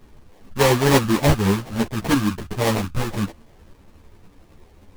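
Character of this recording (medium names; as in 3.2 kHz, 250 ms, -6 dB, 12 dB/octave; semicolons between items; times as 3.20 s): phasing stages 4, 3.5 Hz, lowest notch 420–1700 Hz; aliases and images of a low sample rate 1.4 kHz, jitter 20%; a shimmering, thickened sound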